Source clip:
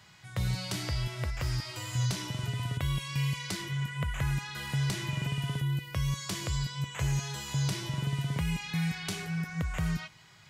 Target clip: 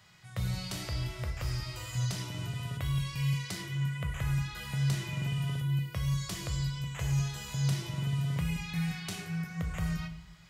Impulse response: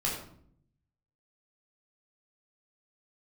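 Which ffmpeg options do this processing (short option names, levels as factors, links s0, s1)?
-filter_complex "[0:a]asplit=2[s0][s1];[1:a]atrim=start_sample=2205,highshelf=f=11000:g=11[s2];[s1][s2]afir=irnorm=-1:irlink=0,volume=0.335[s3];[s0][s3]amix=inputs=2:normalize=0,volume=0.473"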